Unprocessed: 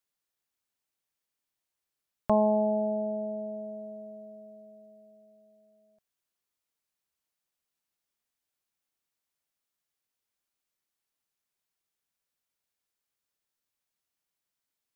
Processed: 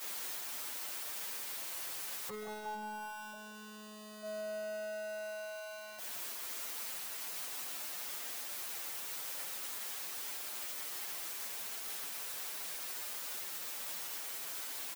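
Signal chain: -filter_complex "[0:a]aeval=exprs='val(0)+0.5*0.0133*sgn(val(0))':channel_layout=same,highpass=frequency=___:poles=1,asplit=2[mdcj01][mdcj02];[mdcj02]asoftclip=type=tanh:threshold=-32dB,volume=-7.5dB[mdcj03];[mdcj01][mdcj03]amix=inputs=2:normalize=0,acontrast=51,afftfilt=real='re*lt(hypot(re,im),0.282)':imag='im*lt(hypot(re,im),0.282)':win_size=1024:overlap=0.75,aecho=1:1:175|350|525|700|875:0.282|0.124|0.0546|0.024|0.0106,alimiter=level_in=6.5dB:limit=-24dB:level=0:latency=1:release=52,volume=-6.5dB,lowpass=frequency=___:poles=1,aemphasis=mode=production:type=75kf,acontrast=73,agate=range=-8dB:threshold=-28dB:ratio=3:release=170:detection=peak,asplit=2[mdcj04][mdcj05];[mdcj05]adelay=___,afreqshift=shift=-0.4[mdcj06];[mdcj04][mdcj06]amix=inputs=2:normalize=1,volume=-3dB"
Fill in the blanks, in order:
610, 1300, 7.5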